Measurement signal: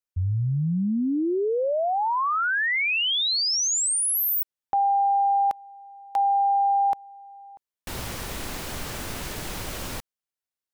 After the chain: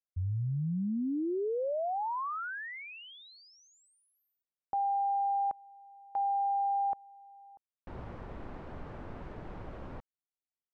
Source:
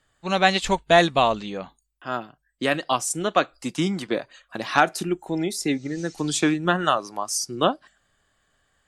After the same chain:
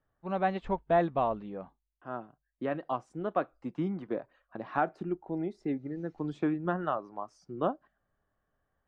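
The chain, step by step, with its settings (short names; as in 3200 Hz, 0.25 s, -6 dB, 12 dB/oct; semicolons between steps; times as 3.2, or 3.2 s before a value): LPF 1100 Hz 12 dB/oct; gain -8 dB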